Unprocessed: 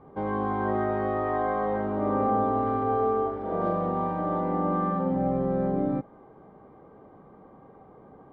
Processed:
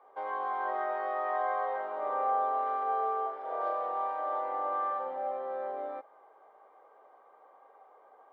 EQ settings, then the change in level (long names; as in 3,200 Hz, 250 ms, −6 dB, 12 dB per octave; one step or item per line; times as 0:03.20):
high-pass filter 580 Hz 24 dB per octave
−2.0 dB